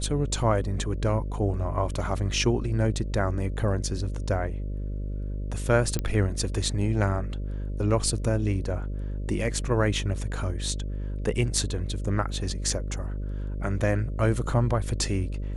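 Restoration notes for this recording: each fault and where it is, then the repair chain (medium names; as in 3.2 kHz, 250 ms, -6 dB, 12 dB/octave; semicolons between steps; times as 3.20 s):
buzz 50 Hz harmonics 12 -31 dBFS
5.99 s: pop -14 dBFS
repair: de-click; de-hum 50 Hz, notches 12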